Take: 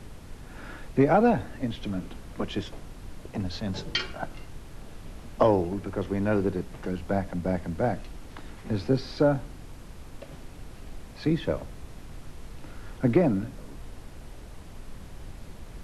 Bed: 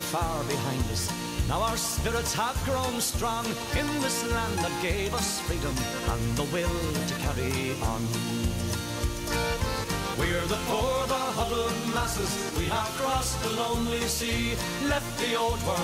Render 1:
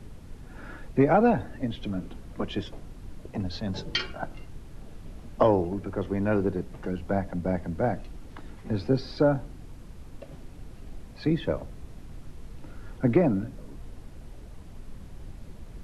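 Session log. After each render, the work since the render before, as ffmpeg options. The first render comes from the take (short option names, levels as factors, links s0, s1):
-af "afftdn=nr=6:nf=-45"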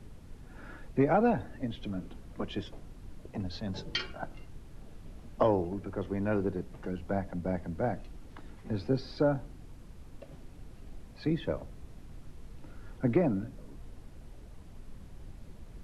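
-af "volume=0.562"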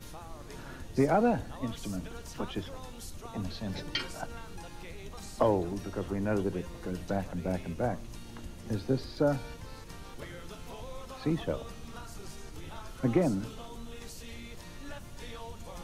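-filter_complex "[1:a]volume=0.119[s0];[0:a][s0]amix=inputs=2:normalize=0"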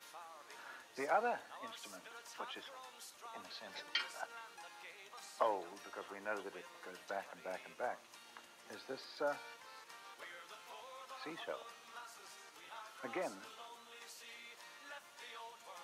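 -af "highpass=990,highshelf=f=3100:g=-8.5"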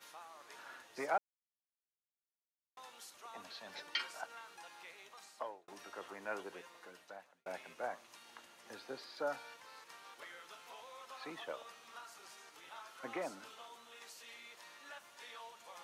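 -filter_complex "[0:a]asplit=5[s0][s1][s2][s3][s4];[s0]atrim=end=1.18,asetpts=PTS-STARTPTS,afade=t=out:st=1.176:d=0.004:c=hsin[s5];[s1]atrim=start=1.18:end=2.77,asetpts=PTS-STARTPTS,volume=0[s6];[s2]atrim=start=2.77:end=5.68,asetpts=PTS-STARTPTS,afade=t=in:d=0.004:c=hsin,afade=t=out:st=2.23:d=0.68[s7];[s3]atrim=start=5.68:end=7.46,asetpts=PTS-STARTPTS,afade=t=in:d=0.004:c=hsin,afade=t=out:st=0.87:d=0.91[s8];[s4]atrim=start=7.46,asetpts=PTS-STARTPTS,afade=t=in:d=0.004:c=hsin[s9];[s5][s6][s7][s8][s9]concat=n=5:v=0:a=1"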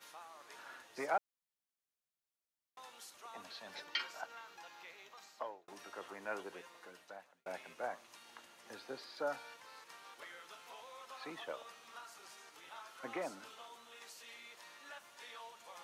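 -filter_complex "[0:a]asettb=1/sr,asplit=3[s0][s1][s2];[s0]atrim=end=3.844[s3];[s1]atrim=start=3.84:end=5.67,asetpts=PTS-STARTPTS,afade=t=in:d=0.004:c=qsin,afade=t=out:st=1.826:d=0.004:c=qsin,equalizer=f=9300:w=3.7:g=-15[s4];[s2]atrim=start=5.666[s5];[s3][s4]acrossfade=d=0.004:c1=hsin:c2=qsin[s6];[s6][s5]acrossfade=d=0.004:c1=qsin:c2=hsin"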